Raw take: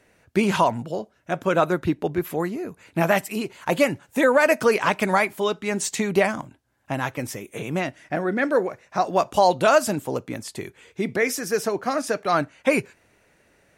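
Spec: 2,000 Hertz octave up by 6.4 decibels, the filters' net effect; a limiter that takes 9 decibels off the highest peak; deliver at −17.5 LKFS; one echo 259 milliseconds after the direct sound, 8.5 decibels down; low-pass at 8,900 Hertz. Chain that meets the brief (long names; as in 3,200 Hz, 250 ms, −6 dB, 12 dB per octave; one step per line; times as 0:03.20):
low-pass filter 8,900 Hz
parametric band 2,000 Hz +8 dB
brickwall limiter −11 dBFS
single-tap delay 259 ms −8.5 dB
level +6.5 dB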